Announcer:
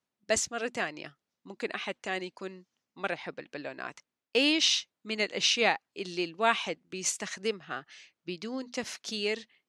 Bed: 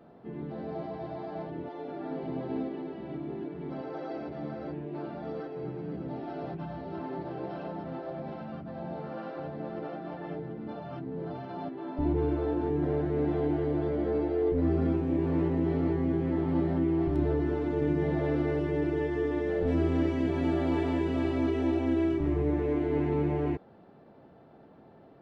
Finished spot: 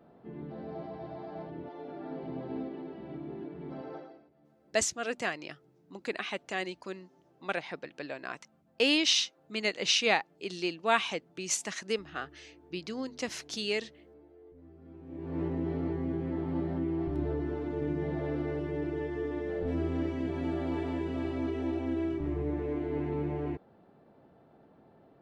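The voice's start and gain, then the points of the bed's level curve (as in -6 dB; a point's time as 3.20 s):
4.45 s, -0.5 dB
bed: 3.95 s -4 dB
4.31 s -28 dB
14.79 s -28 dB
15.42 s -5 dB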